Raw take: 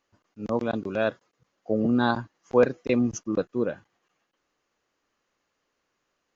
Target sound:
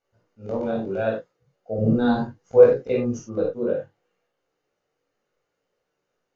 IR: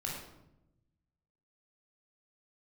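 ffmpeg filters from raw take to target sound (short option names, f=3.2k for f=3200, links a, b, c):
-filter_complex "[0:a]equalizer=f=460:t=o:w=0.87:g=11.5,flanger=delay=15.5:depth=5.8:speed=0.68,asettb=1/sr,asplit=3[a][b][c];[a]atrim=end=1.784[d];[b]atrim=start=1.78:end=2.57,asetpts=PTS-STARTPTS,afade=t=in:d=0.004:c=qsin,afade=t=out:st=0.786:d=0.004:c=qsin,bass=f=250:g=9,treble=f=4k:g=4[e];[c]atrim=start=2.566[f];[d][e]acrossfade=d=0.004:c1=hsin:c2=qsin[g];[g][f]acrossfade=d=0.004:c1=qsin:c2=hsin[h];[1:a]atrim=start_sample=2205,atrim=end_sample=4410[i];[h][i]afir=irnorm=-1:irlink=0,volume=-2.5dB"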